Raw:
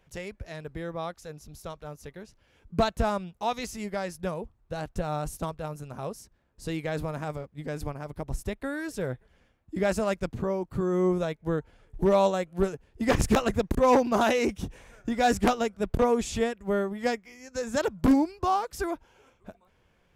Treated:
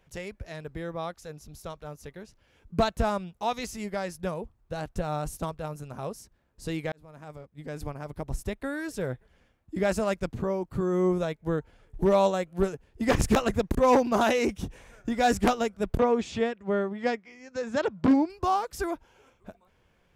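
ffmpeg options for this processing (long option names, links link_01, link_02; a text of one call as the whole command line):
ffmpeg -i in.wav -filter_complex "[0:a]asettb=1/sr,asplit=3[link_01][link_02][link_03];[link_01]atrim=end=15.994[link_04];[link_02]atrim=start=15.99:end=18.3,asetpts=PTS-STARTPTS,afade=type=in:duration=0.004:curve=qsin,afade=type=out:start_time=2.306:duration=0.004:curve=qsin,highpass=110,lowpass=4300[link_05];[link_03]atrim=start=18.296[link_06];[link_04][link_05]acrossfade=duration=0.004:curve1=hsin:curve2=qsin[link_07];[link_07][link_06]acrossfade=duration=0.004:curve1=qsin:curve2=hsin,asplit=2[link_08][link_09];[link_08]atrim=end=6.92,asetpts=PTS-STARTPTS,afade=type=out:start_time=6.916:duration=0.004:curve=hsin[link_10];[link_09]atrim=start=6.92,asetpts=PTS-STARTPTS,afade=type=in:duration=1.15[link_11];[link_10][link_11]concat=n=2:v=0:a=1" out.wav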